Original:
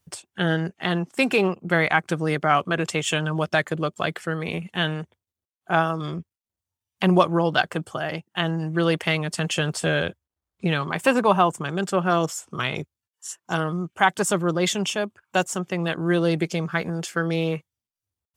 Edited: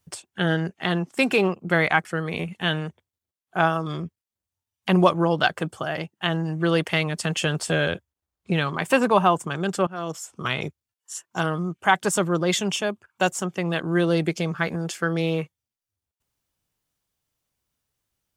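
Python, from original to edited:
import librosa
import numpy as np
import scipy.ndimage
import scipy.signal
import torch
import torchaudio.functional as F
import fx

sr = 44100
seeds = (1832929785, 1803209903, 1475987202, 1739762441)

y = fx.edit(x, sr, fx.cut(start_s=2.05, length_s=2.14),
    fx.fade_in_from(start_s=12.01, length_s=0.6, floor_db=-19.5), tone=tone)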